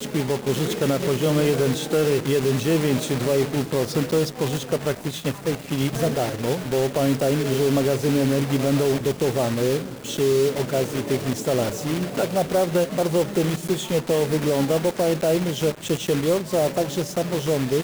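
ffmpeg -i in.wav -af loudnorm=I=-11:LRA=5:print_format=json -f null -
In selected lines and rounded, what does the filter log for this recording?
"input_i" : "-22.7",
"input_tp" : "-10.3",
"input_lra" : "1.6",
"input_thresh" : "-32.7",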